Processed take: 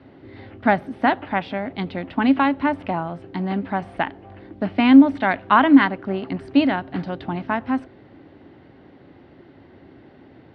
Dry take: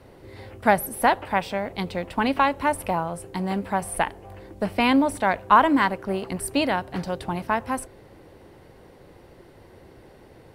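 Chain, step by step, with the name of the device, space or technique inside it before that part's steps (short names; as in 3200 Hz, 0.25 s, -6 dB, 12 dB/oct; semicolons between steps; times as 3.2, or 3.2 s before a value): guitar cabinet (speaker cabinet 90–3600 Hz, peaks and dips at 270 Hz +9 dB, 490 Hz -8 dB, 1000 Hz -5 dB, 2500 Hz -3 dB); 5.15–5.85 bell 3100 Hz +4 dB 2.3 oct; gain +2 dB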